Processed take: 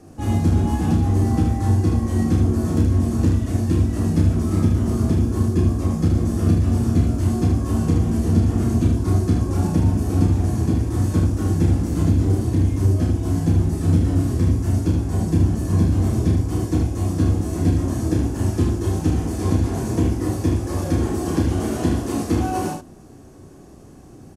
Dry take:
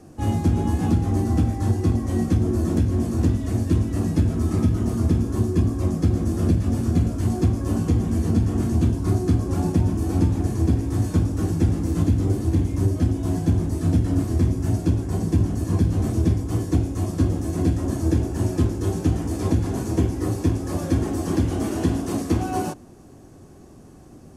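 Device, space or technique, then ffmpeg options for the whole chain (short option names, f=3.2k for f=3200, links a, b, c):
slapback doubling: -filter_complex "[0:a]asplit=3[a][b][c];[b]adelay=32,volume=-4dB[d];[c]adelay=75,volume=-5dB[e];[a][d][e]amix=inputs=3:normalize=0"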